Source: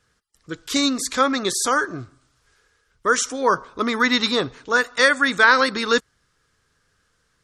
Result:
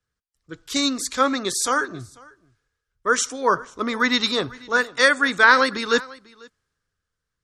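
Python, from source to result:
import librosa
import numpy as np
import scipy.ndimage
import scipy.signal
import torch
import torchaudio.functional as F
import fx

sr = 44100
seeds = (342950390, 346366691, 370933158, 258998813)

y = x + 10.0 ** (-19.0 / 20.0) * np.pad(x, (int(495 * sr / 1000.0), 0))[:len(x)]
y = fx.band_widen(y, sr, depth_pct=40)
y = y * 10.0 ** (-1.5 / 20.0)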